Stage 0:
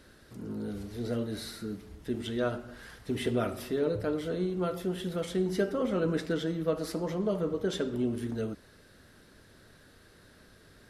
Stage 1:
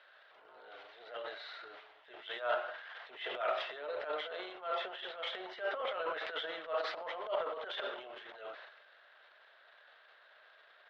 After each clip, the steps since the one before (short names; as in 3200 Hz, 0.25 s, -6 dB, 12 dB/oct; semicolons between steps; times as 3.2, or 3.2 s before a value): elliptic band-pass 640–3400 Hz, stop band 50 dB; transient shaper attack -11 dB, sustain +11 dB; gain +1 dB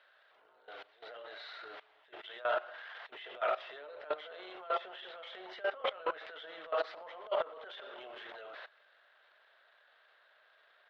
level quantiser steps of 18 dB; gain +5.5 dB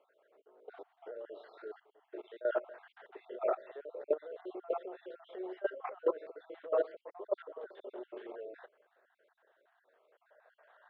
random spectral dropouts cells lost 44%; band-pass sweep 380 Hz -> 920 Hz, 10.01–10.86; gain +12 dB